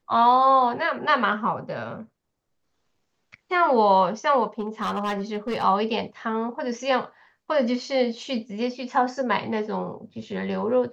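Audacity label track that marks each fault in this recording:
4.590000	5.640000	clipped -22.5 dBFS

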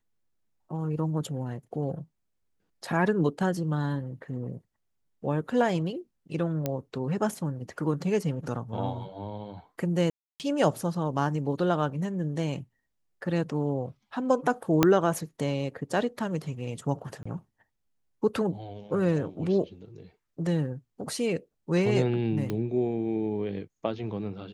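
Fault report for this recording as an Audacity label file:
6.660000	6.660000	pop -14 dBFS
10.100000	10.400000	gap 0.298 s
14.830000	14.830000	pop -5 dBFS
17.230000	17.250000	gap 25 ms
22.500000	22.500000	pop -18 dBFS

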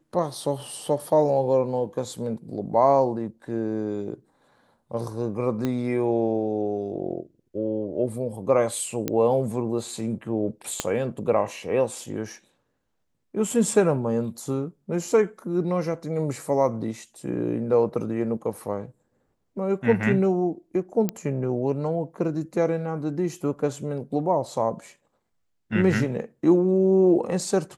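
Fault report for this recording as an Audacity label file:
5.650000	5.650000	pop -14 dBFS
9.080000	9.080000	pop -10 dBFS
10.800000	10.800000	pop -9 dBFS
21.090000	21.090000	pop -11 dBFS

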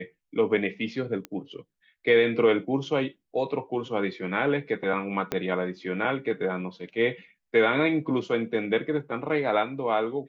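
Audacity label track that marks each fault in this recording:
1.250000	1.250000	pop -20 dBFS
5.320000	5.320000	pop -12 dBFS

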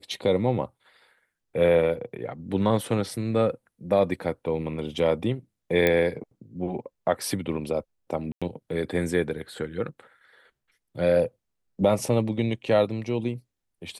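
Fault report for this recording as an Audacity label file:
5.870000	5.870000	pop -9 dBFS
8.320000	8.420000	gap 96 ms

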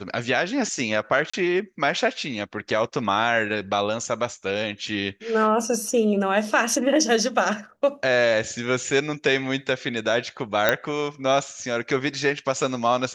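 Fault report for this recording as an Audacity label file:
1.300000	1.330000	gap 35 ms
10.690000	10.690000	pop -4 dBFS

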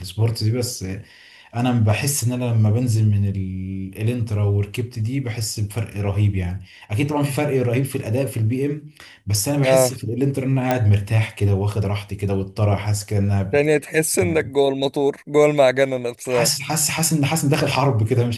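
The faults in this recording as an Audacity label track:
10.710000	10.710000	pop -6 dBFS

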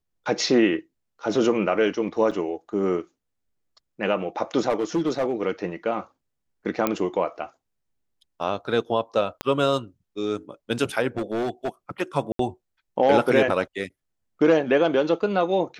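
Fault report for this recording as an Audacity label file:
2.310000	2.320000	gap 5.5 ms
4.690000	5.330000	clipped -18.5 dBFS
6.870000	6.870000	pop -8 dBFS
9.410000	9.410000	pop -12 dBFS
11.170000	11.690000	clipped -22 dBFS
12.320000	12.390000	gap 73 ms

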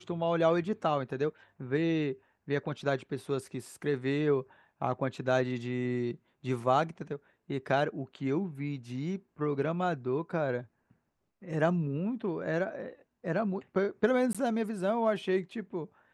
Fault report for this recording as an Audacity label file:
14.330000	14.350000	gap 16 ms

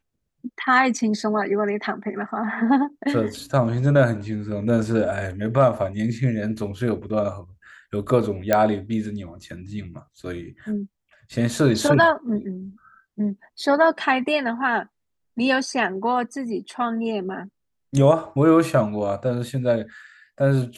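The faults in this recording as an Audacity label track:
8.530000	8.530000	pop -5 dBFS

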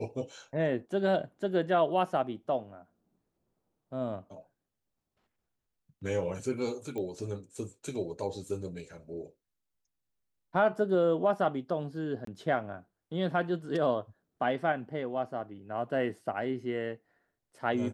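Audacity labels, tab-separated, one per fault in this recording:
6.980000	6.980000	pop -26 dBFS
12.250000	12.270000	gap 23 ms

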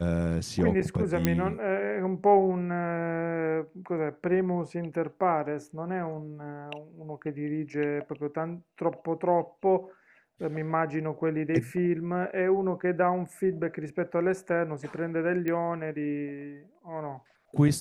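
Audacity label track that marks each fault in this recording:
1.250000	1.250000	pop -10 dBFS
15.480000	15.480000	pop -19 dBFS

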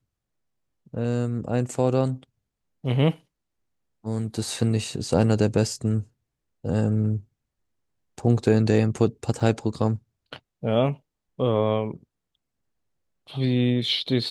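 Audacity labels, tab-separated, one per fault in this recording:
9.400000	9.400000	gap 3.9 ms

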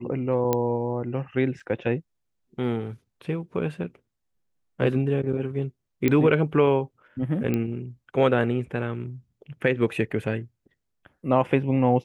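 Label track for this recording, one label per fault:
0.530000	0.530000	pop -9 dBFS
1.600000	1.600000	gap 4.3 ms
6.080000	6.080000	pop -9 dBFS
7.540000	7.540000	pop -14 dBFS

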